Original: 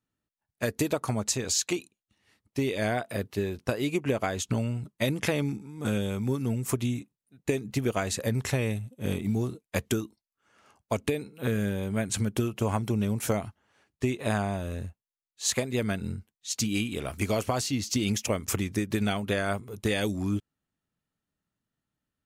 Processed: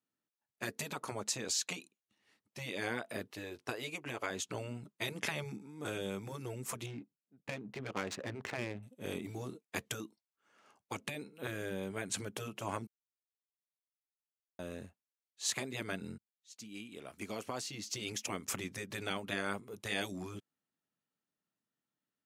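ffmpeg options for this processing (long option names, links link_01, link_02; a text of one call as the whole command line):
ffmpeg -i in.wav -filter_complex "[0:a]asettb=1/sr,asplit=3[link_01][link_02][link_03];[link_01]atrim=end=3.314[link_04];[link_02]atrim=start=3.31:end=4.31,asetpts=PTS-STARTPTS,afade=type=in:duration=0.004:curve=qsin,afade=type=out:start_time=0.996:duration=0.004:curve=qsin,equalizer=frequency=200:width_type=o:width=0.59:gain=-14.5[link_05];[link_03]atrim=start=4.306[link_06];[link_04][link_05]acrossfade=duration=0.004:curve1=hsin:curve2=qsin[link_07];[link_07][link_06]acrossfade=duration=0.004:curve1=qsin:curve2=hsin,asettb=1/sr,asplit=3[link_08][link_09][link_10];[link_08]atrim=end=6.864[link_11];[link_09]atrim=start=6.86:end=8.83,asetpts=PTS-STARTPTS,afade=type=in:duration=0.004:curve=qsin,afade=type=out:start_time=1.966:duration=0.004:curve=qsin,adynamicsmooth=sensitivity=6.5:basefreq=810[link_12];[link_10]atrim=start=8.826[link_13];[link_11][link_12]acrossfade=duration=0.004:curve1=hsin:curve2=qsin[link_14];[link_14][link_13]acrossfade=duration=0.004:curve1=qsin:curve2=hsin,asplit=4[link_15][link_16][link_17][link_18];[link_15]atrim=end=12.87,asetpts=PTS-STARTPTS,afade=type=out:start_time=12.866:duration=0.004:curve=hsin[link_19];[link_16]atrim=start=12.87:end=14.59,asetpts=PTS-STARTPTS,volume=0[link_20];[link_17]atrim=start=14.59:end=16.18,asetpts=PTS-STARTPTS,afade=type=in:duration=0.004:curve=hsin,afade=type=out:start_time=1.586:duration=0.004:curve=hsin[link_21];[link_18]atrim=start=16.18,asetpts=PTS-STARTPTS,afade=type=in:duration=2.34[link_22];[link_19][link_20][link_21][link_22]concat=n=4:v=0:a=1,highpass=200,afftfilt=real='re*lt(hypot(re,im),0.178)':imag='im*lt(hypot(re,im),0.178)':win_size=1024:overlap=0.75,highshelf=frequency=12000:gain=-7,volume=-5dB" out.wav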